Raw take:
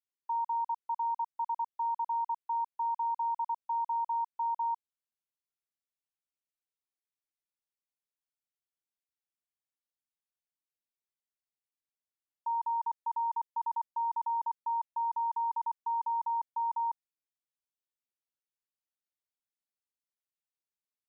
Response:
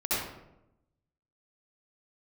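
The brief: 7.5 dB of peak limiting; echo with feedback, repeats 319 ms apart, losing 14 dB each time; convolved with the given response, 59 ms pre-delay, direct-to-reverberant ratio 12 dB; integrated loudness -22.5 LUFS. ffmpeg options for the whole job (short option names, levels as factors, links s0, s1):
-filter_complex "[0:a]alimiter=level_in=3.76:limit=0.0631:level=0:latency=1,volume=0.266,aecho=1:1:319|638:0.2|0.0399,asplit=2[s0][s1];[1:a]atrim=start_sample=2205,adelay=59[s2];[s1][s2]afir=irnorm=-1:irlink=0,volume=0.0841[s3];[s0][s3]amix=inputs=2:normalize=0,volume=7.08"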